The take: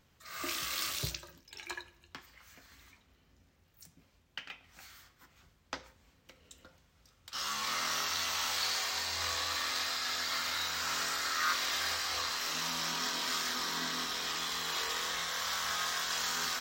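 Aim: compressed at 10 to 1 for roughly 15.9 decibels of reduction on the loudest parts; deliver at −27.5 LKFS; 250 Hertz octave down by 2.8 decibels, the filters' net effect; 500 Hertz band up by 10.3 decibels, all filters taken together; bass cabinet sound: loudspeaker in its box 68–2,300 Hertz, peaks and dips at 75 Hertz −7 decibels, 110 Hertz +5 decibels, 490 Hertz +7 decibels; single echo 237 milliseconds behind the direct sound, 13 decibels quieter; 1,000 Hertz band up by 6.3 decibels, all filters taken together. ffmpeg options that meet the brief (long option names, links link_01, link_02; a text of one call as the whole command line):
ffmpeg -i in.wav -af "equalizer=frequency=250:width_type=o:gain=-7.5,equalizer=frequency=500:width_type=o:gain=7.5,equalizer=frequency=1000:width_type=o:gain=6.5,acompressor=threshold=-39dB:ratio=10,highpass=frequency=68:width=0.5412,highpass=frequency=68:width=1.3066,equalizer=frequency=75:width_type=q:width=4:gain=-7,equalizer=frequency=110:width_type=q:width=4:gain=5,equalizer=frequency=490:width_type=q:width=4:gain=7,lowpass=frequency=2300:width=0.5412,lowpass=frequency=2300:width=1.3066,aecho=1:1:237:0.224,volume=16.5dB" out.wav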